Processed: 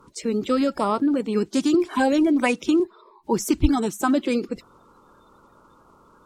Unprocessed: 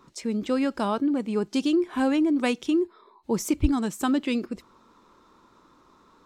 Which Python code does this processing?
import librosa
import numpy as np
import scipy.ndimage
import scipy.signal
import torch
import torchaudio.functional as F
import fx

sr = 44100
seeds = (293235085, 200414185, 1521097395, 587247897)

y = fx.spec_quant(x, sr, step_db=30)
y = fx.notch(y, sr, hz=6000.0, q=7.9, at=(0.58, 1.06))
y = fx.band_squash(y, sr, depth_pct=40, at=(1.74, 2.8))
y = y * 10.0 ** (4.0 / 20.0)